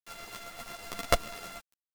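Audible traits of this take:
a buzz of ramps at a fixed pitch in blocks of 64 samples
tremolo saw up 8 Hz, depth 45%
a quantiser's noise floor 8 bits, dither none
a shimmering, thickened sound

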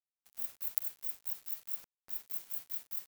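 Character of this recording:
a quantiser's noise floor 8 bits, dither none

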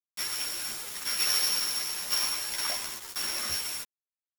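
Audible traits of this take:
a buzz of ramps at a fixed pitch in blocks of 8 samples
tremolo saw down 0.95 Hz, depth 75%
a quantiser's noise floor 6 bits, dither none
a shimmering, thickened sound

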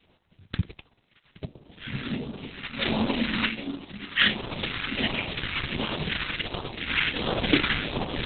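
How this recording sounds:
aliases and images of a low sample rate 4,900 Hz, jitter 0%
phaser sweep stages 2, 1.4 Hz, lowest notch 600–1,800 Hz
a quantiser's noise floor 12 bits, dither none
Opus

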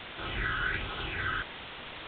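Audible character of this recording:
phaser sweep stages 12, 1.3 Hz, lowest notch 700–1,900 Hz
a quantiser's noise floor 6 bits, dither triangular
A-law companding

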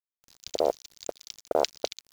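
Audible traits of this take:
tremolo saw up 2.8 Hz, depth 45%
a quantiser's noise floor 8 bits, dither none

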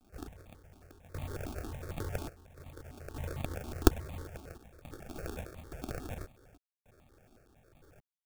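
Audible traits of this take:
aliases and images of a low sample rate 1,000 Hz, jitter 0%
sample-and-hold tremolo, depth 90%
a quantiser's noise floor 12 bits, dither none
notches that jump at a steady rate 11 Hz 500–1,500 Hz

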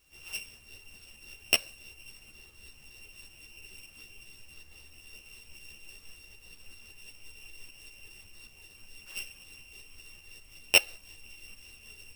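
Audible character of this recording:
a buzz of ramps at a fixed pitch in blocks of 16 samples
tremolo saw up 5.2 Hz, depth 40%
a quantiser's noise floor 12 bits, dither triangular
a shimmering, thickened sound

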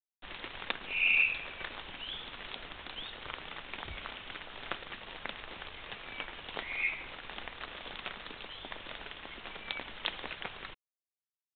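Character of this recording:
a quantiser's noise floor 8 bits, dither none
mu-law

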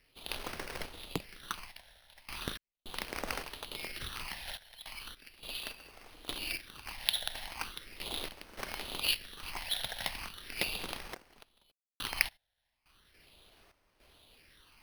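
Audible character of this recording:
sample-and-hold tremolo, depth 100%
phaser sweep stages 8, 0.38 Hz, lowest notch 340–3,100 Hz
aliases and images of a low sample rate 7,300 Hz, jitter 0%

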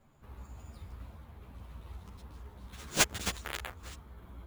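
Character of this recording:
aliases and images of a low sample rate 14,000 Hz, jitter 0%
a shimmering, thickened sound

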